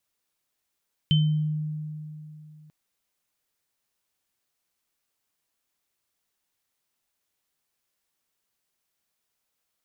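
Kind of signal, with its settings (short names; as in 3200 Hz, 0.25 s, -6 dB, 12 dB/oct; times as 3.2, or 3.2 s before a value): sine partials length 1.59 s, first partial 153 Hz, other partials 3080 Hz, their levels -5 dB, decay 2.96 s, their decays 0.44 s, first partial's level -16.5 dB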